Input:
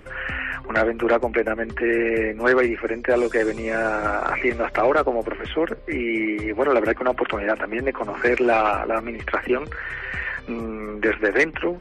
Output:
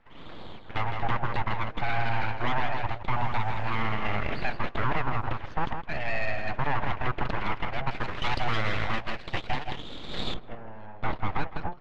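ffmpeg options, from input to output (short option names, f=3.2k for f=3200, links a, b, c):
-af "highpass=f=310:p=1,aeval=exprs='abs(val(0))':c=same,aecho=1:1:163:0.376,dynaudnorm=f=320:g=7:m=5dB,asetnsamples=n=441:p=0,asendcmd='7.91 lowpass f 4000;10.34 lowpass f 1400',lowpass=2.2k,alimiter=limit=-11.5dB:level=0:latency=1:release=142,agate=range=-7dB:threshold=-24dB:ratio=16:detection=peak,volume=-3.5dB"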